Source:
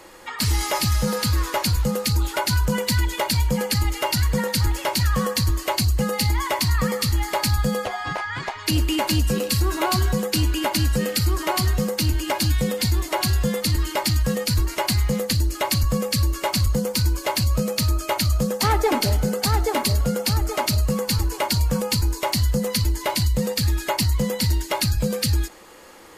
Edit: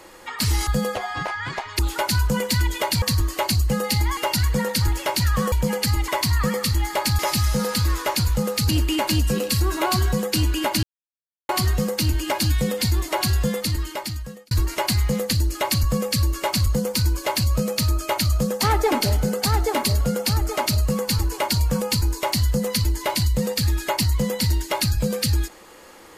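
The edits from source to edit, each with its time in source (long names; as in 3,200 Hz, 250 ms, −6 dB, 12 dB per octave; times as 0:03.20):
0:00.67–0:02.17: swap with 0:07.57–0:08.69
0:03.40–0:03.96: swap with 0:05.31–0:06.46
0:10.83–0:11.49: silence
0:13.44–0:14.51: fade out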